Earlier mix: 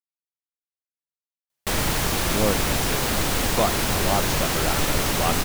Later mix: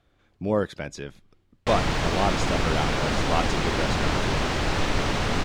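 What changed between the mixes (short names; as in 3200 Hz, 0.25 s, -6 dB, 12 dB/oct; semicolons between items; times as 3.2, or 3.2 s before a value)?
speech: entry -1.90 s; background: add air absorption 130 m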